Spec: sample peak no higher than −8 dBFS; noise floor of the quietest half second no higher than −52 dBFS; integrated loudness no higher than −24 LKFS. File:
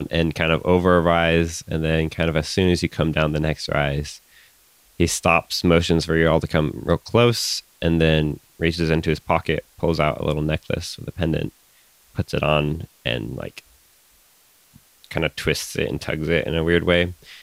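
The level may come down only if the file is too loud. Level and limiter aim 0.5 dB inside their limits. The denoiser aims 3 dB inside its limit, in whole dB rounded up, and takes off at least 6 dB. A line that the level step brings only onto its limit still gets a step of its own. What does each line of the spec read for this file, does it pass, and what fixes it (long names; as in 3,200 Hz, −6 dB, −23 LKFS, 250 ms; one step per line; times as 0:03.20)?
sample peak −3.0 dBFS: out of spec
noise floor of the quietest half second −56 dBFS: in spec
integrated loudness −21.0 LKFS: out of spec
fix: level −3.5 dB
brickwall limiter −8.5 dBFS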